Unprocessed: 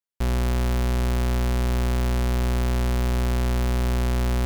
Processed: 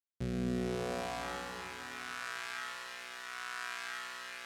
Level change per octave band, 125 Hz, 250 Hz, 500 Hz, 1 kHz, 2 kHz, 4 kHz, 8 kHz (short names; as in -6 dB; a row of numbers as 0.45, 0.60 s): -22.5, -12.5, -11.0, -9.0, -4.5, -8.0, -10.5 dB